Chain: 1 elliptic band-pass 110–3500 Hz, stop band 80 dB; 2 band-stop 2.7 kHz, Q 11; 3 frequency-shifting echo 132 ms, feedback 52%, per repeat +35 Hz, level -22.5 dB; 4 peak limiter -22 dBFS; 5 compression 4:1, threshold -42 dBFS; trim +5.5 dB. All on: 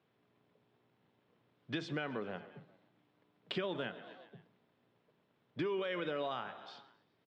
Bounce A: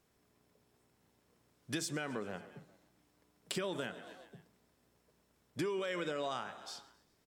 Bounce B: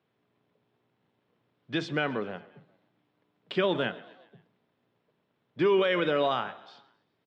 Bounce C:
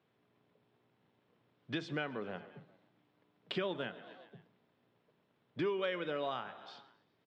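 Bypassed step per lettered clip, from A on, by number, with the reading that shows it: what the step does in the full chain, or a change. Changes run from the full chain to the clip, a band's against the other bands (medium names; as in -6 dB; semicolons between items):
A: 1, crest factor change +4.5 dB; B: 5, mean gain reduction 6.5 dB; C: 4, mean gain reduction 2.0 dB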